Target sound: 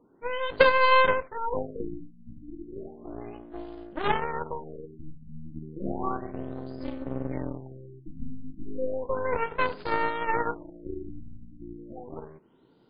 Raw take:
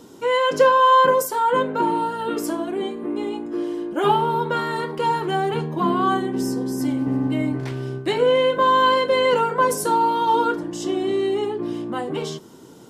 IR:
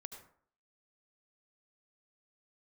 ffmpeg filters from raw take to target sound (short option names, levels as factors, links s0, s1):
-af "aeval=exprs='0.596*(cos(1*acos(clip(val(0)/0.596,-1,1)))-cos(1*PI/2))+0.133*(cos(2*acos(clip(val(0)/0.596,-1,1)))-cos(2*PI/2))+0.168*(cos(3*acos(clip(val(0)/0.596,-1,1)))-cos(3*PI/2))+0.106*(cos(4*acos(clip(val(0)/0.596,-1,1)))-cos(4*PI/2))':c=same,afftfilt=real='re*lt(b*sr/1024,280*pow(5100/280,0.5+0.5*sin(2*PI*0.33*pts/sr)))':imag='im*lt(b*sr/1024,280*pow(5100/280,0.5+0.5*sin(2*PI*0.33*pts/sr)))':win_size=1024:overlap=0.75"